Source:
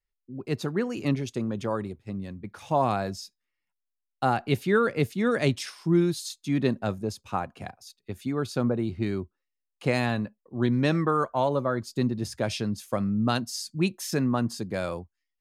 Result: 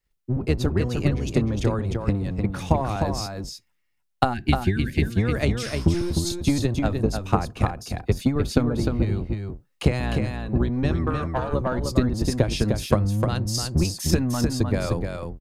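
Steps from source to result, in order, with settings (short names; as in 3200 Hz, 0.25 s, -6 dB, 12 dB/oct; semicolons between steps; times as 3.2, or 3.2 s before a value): octaver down 1 oct, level +4 dB; compressor, threshold -29 dBFS, peak gain reduction 14 dB; 4.34–5.02 spectral gain 390–1500 Hz -21 dB; 11.1–11.51 tube stage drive 27 dB, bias 0.65; transient shaper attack +8 dB, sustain +4 dB; echo 0.304 s -5 dB; gain +6 dB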